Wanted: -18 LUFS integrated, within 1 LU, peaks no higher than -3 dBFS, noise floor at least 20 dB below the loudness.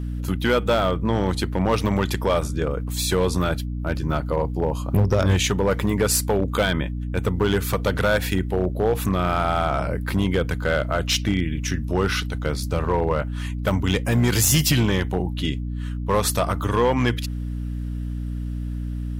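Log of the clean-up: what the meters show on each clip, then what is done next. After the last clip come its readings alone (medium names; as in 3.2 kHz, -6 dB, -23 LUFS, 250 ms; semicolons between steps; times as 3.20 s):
clipped samples 1.0%; clipping level -12.5 dBFS; hum 60 Hz; highest harmonic 300 Hz; hum level -25 dBFS; loudness -23.0 LUFS; peak level -12.5 dBFS; loudness target -18.0 LUFS
-> clip repair -12.5 dBFS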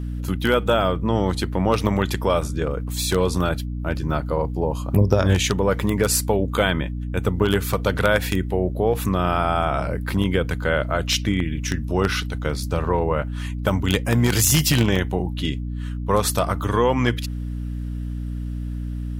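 clipped samples 0.0%; hum 60 Hz; highest harmonic 300 Hz; hum level -25 dBFS
-> de-hum 60 Hz, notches 5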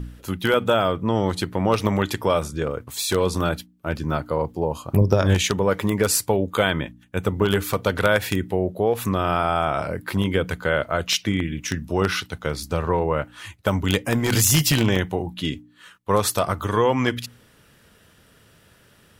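hum not found; loudness -22.5 LUFS; peak level -3.5 dBFS; loudness target -18.0 LUFS
-> trim +4.5 dB; peak limiter -3 dBFS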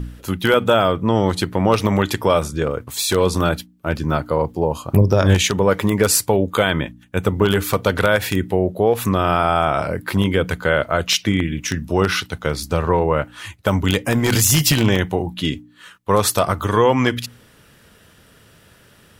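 loudness -18.5 LUFS; peak level -3.0 dBFS; noise floor -51 dBFS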